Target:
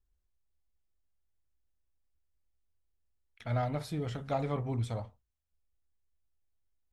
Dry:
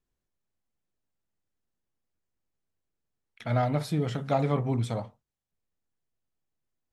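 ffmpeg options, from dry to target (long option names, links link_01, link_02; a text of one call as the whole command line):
ffmpeg -i in.wav -af "lowshelf=frequency=100:width_type=q:width=1.5:gain=13,volume=-6dB" out.wav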